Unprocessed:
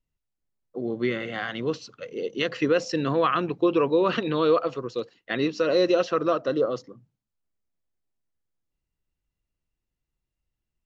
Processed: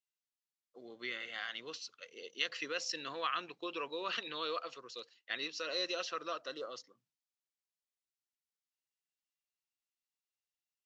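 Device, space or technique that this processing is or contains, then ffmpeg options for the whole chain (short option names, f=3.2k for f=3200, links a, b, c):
piezo pickup straight into a mixer: -af "lowpass=5.6k,aderivative,volume=3dB"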